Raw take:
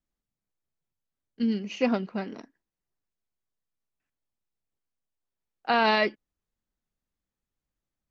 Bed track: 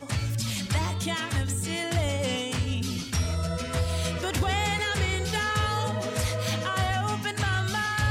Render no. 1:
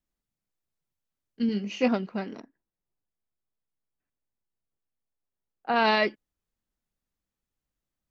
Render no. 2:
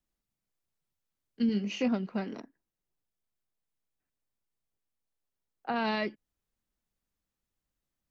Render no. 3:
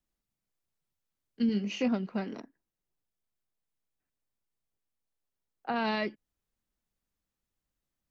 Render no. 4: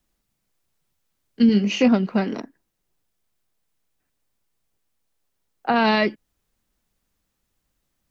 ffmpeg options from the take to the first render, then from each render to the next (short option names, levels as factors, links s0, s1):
-filter_complex "[0:a]asettb=1/sr,asplit=3[s0][s1][s2];[s0]atrim=end=1.474[s3];[s1]atrim=start=1.47:end=1.88,asetpts=PTS-STARTPTS,afade=t=in:d=0.004:c=qsin,afade=t=out:st=0.406:d=0.004:c=qsin,asplit=2[s4][s5];[s5]adelay=20,volume=0.447[s6];[s4][s6]amix=inputs=2:normalize=0,atrim=end_sample=18081[s7];[s2]atrim=start=1.876[s8];[s3][s7]acrossfade=d=0.004:c1=hsin:c2=qsin[s9];[s9][s8]acrossfade=d=0.004:c1=qsin:c2=hsin,asplit=3[s10][s11][s12];[s10]afade=t=out:st=2.39:d=0.02[s13];[s11]lowpass=f=1100:p=1,afade=t=in:st=2.39:d=0.02,afade=t=out:st=5.75:d=0.02[s14];[s12]afade=t=in:st=5.75:d=0.02[s15];[s13][s14][s15]amix=inputs=3:normalize=0"
-filter_complex "[0:a]acrossover=split=250[s0][s1];[s1]acompressor=threshold=0.0224:ratio=3[s2];[s0][s2]amix=inputs=2:normalize=0"
-af anull
-af "volume=3.98"